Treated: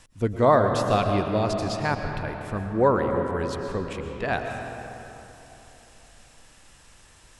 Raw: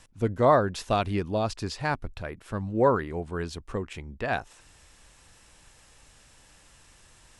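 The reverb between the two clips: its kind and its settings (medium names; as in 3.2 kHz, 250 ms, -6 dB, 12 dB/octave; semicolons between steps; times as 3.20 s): algorithmic reverb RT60 3.3 s, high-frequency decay 0.5×, pre-delay 80 ms, DRR 4 dB; trim +1.5 dB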